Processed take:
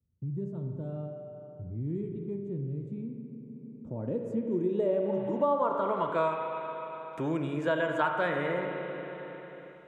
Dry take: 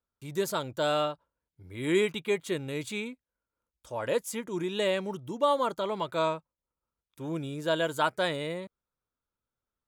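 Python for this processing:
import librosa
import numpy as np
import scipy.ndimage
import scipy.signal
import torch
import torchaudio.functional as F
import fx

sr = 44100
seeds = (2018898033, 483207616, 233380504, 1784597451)

y = scipy.signal.sosfilt(scipy.signal.butter(2, 95.0, 'highpass', fs=sr, output='sos'), x)
y = fx.high_shelf_res(y, sr, hz=5700.0, db=9.5, q=1.5)
y = fx.rev_spring(y, sr, rt60_s=1.9, pass_ms=(35, 45), chirp_ms=45, drr_db=3.5)
y = fx.filter_sweep_lowpass(y, sr, from_hz=120.0, to_hz=2100.0, start_s=3.45, end_s=6.35, q=1.3)
y = fx.band_squash(y, sr, depth_pct=70)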